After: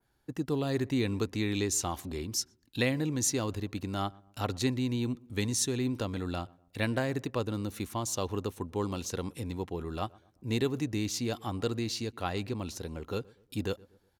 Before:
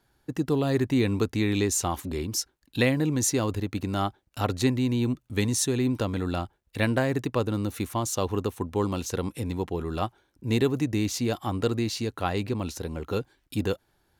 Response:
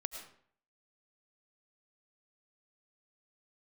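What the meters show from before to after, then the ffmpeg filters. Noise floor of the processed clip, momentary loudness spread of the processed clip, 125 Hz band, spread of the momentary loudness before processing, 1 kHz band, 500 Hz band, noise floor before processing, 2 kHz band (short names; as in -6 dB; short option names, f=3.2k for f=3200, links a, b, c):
-69 dBFS, 9 LU, -6.0 dB, 8 LU, -6.0 dB, -6.0 dB, -70 dBFS, -5.0 dB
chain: -filter_complex "[0:a]adynamicequalizer=threshold=0.00631:dfrequency=5000:dqfactor=0.77:tfrequency=5000:tqfactor=0.77:attack=5:release=100:ratio=0.375:range=2:mode=boostabove:tftype=bell,asplit=2[a][b];[b]adelay=121,lowpass=f=1.2k:p=1,volume=-23dB,asplit=2[c][d];[d]adelay=121,lowpass=f=1.2k:p=1,volume=0.43,asplit=2[e][f];[f]adelay=121,lowpass=f=1.2k:p=1,volume=0.43[g];[c][e][g]amix=inputs=3:normalize=0[h];[a][h]amix=inputs=2:normalize=0,volume=-6dB"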